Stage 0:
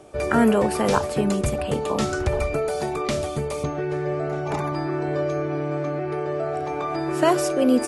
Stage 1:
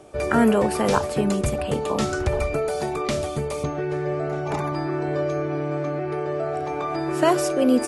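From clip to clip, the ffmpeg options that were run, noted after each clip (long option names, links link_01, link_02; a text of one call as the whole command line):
ffmpeg -i in.wav -af anull out.wav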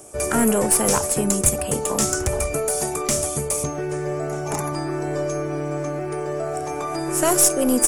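ffmpeg -i in.wav -af "asoftclip=type=tanh:threshold=-10.5dB,aexciter=amount=4.7:drive=9.1:freq=5800,aeval=exprs='0.668*(cos(1*acos(clip(val(0)/0.668,-1,1)))-cos(1*PI/2))+0.0531*(cos(4*acos(clip(val(0)/0.668,-1,1)))-cos(4*PI/2))':channel_layout=same" out.wav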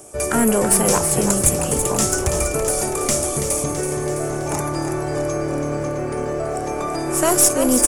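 ffmpeg -i in.wav -filter_complex "[0:a]asplit=9[link_01][link_02][link_03][link_04][link_05][link_06][link_07][link_08][link_09];[link_02]adelay=330,afreqshift=-38,volume=-8dB[link_10];[link_03]adelay=660,afreqshift=-76,volume=-12.2dB[link_11];[link_04]adelay=990,afreqshift=-114,volume=-16.3dB[link_12];[link_05]adelay=1320,afreqshift=-152,volume=-20.5dB[link_13];[link_06]adelay=1650,afreqshift=-190,volume=-24.6dB[link_14];[link_07]adelay=1980,afreqshift=-228,volume=-28.8dB[link_15];[link_08]adelay=2310,afreqshift=-266,volume=-32.9dB[link_16];[link_09]adelay=2640,afreqshift=-304,volume=-37.1dB[link_17];[link_01][link_10][link_11][link_12][link_13][link_14][link_15][link_16][link_17]amix=inputs=9:normalize=0,volume=1.5dB" out.wav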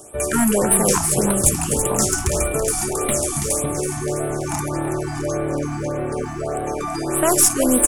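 ffmpeg -i in.wav -af "afftfilt=real='re*(1-between(b*sr/1024,430*pow(5900/430,0.5+0.5*sin(2*PI*1.7*pts/sr))/1.41,430*pow(5900/430,0.5+0.5*sin(2*PI*1.7*pts/sr))*1.41))':imag='im*(1-between(b*sr/1024,430*pow(5900/430,0.5+0.5*sin(2*PI*1.7*pts/sr))/1.41,430*pow(5900/430,0.5+0.5*sin(2*PI*1.7*pts/sr))*1.41))':win_size=1024:overlap=0.75" out.wav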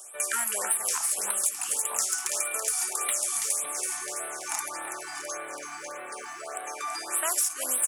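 ffmpeg -i in.wav -af "highpass=1300,acompressor=threshold=-23dB:ratio=6,volume=-1dB" out.wav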